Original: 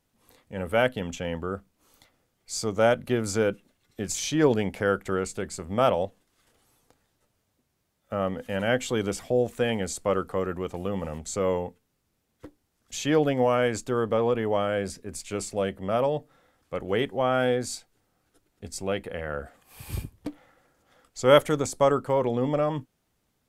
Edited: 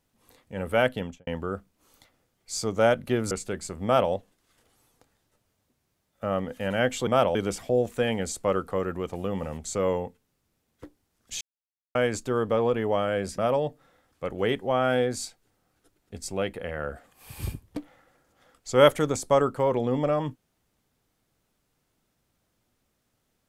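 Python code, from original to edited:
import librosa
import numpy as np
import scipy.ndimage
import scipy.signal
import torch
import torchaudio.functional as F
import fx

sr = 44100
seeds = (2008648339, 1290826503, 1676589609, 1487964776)

y = fx.studio_fade_out(x, sr, start_s=0.98, length_s=0.29)
y = fx.edit(y, sr, fx.cut(start_s=3.31, length_s=1.89),
    fx.duplicate(start_s=5.73, length_s=0.28, to_s=8.96),
    fx.silence(start_s=13.02, length_s=0.54),
    fx.cut(start_s=14.99, length_s=0.89), tone=tone)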